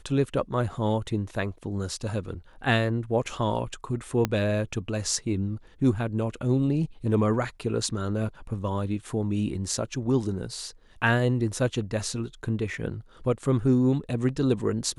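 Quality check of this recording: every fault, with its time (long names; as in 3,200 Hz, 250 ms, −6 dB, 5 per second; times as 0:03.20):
0:04.25: click −10 dBFS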